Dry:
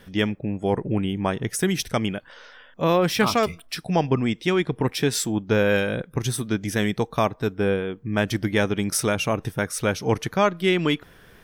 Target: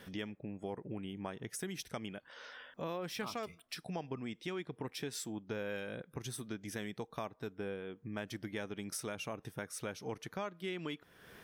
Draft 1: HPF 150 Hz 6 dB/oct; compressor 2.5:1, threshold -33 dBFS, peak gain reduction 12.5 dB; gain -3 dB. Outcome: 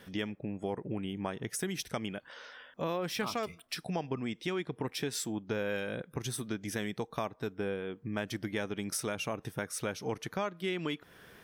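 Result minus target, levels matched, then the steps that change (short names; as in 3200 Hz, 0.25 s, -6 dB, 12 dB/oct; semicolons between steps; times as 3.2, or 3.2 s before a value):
compressor: peak gain reduction -6 dB
change: compressor 2.5:1, threshold -43 dBFS, peak gain reduction 18.5 dB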